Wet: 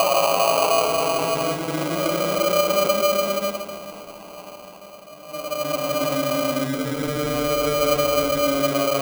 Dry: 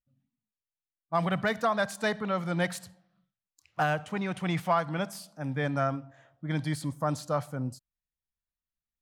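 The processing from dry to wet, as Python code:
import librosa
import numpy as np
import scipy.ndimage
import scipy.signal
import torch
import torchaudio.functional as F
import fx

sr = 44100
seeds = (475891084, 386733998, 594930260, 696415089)

p1 = fx.paulstretch(x, sr, seeds[0], factor=8.4, window_s=0.25, from_s=4.69)
p2 = scipy.signal.sosfilt(scipy.signal.butter(2, 3800.0, 'lowpass', fs=sr, output='sos'), p1)
p3 = fx.peak_eq(p2, sr, hz=580.0, db=14.5, octaves=0.28)
p4 = fx.over_compress(p3, sr, threshold_db=-31.0, ratio=-1.0)
p5 = p3 + (p4 * librosa.db_to_amplitude(-1.0))
p6 = fx.sample_hold(p5, sr, seeds[1], rate_hz=1800.0, jitter_pct=0)
p7 = fx.low_shelf_res(p6, sr, hz=210.0, db=-6.0, q=1.5)
y = p7 * librosa.db_to_amplitude(1.0)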